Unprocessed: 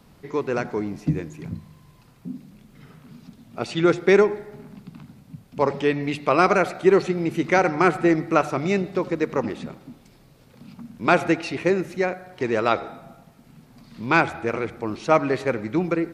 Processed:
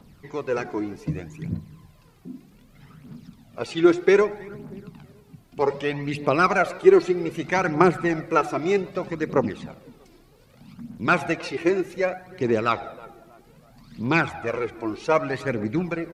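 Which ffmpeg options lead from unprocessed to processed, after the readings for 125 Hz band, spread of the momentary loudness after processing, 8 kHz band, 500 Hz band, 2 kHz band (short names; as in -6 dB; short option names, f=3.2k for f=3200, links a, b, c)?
-1.5 dB, 19 LU, -1.5 dB, -1.0 dB, -1.5 dB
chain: -filter_complex "[0:a]asplit=2[a][b];[b]adelay=320,lowpass=f=2k:p=1,volume=-21dB,asplit=2[c][d];[d]adelay=320,lowpass=f=2k:p=1,volume=0.4,asplit=2[e][f];[f]adelay=320,lowpass=f=2k:p=1,volume=0.4[g];[a][c][e][g]amix=inputs=4:normalize=0,aphaser=in_gain=1:out_gain=1:delay=3.1:decay=0.55:speed=0.64:type=triangular,volume=-3dB"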